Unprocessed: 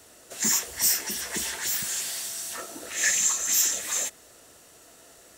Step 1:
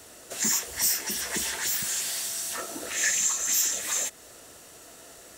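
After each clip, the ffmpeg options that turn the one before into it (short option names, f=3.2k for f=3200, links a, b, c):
-af "acompressor=threshold=-36dB:ratio=1.5,volume=4dB"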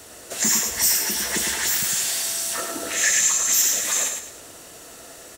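-af "aecho=1:1:106|212|318|424:0.531|0.181|0.0614|0.0209,volume=5dB"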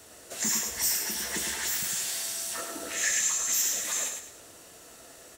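-af "flanger=delay=8.8:depth=9.1:regen=-61:speed=0.45:shape=triangular,volume=-3.5dB"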